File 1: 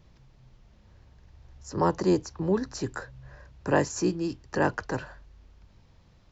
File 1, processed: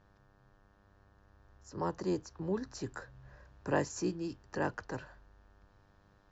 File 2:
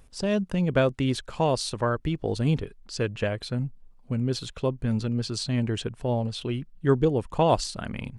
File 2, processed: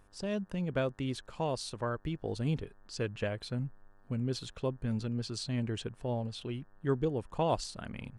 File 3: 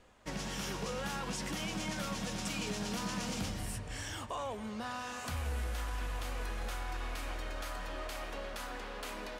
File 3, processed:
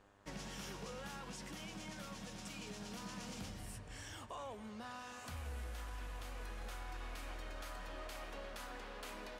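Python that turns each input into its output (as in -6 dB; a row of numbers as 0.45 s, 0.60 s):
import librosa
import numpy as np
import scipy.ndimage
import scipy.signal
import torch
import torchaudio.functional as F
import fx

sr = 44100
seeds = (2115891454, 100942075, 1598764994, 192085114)

y = fx.rider(x, sr, range_db=3, speed_s=2.0)
y = fx.dmg_buzz(y, sr, base_hz=100.0, harmonics=18, level_db=-60.0, tilt_db=-2, odd_only=False)
y = y * librosa.db_to_amplitude(-9.0)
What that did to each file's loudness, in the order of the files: -9.0 LU, -8.5 LU, -9.0 LU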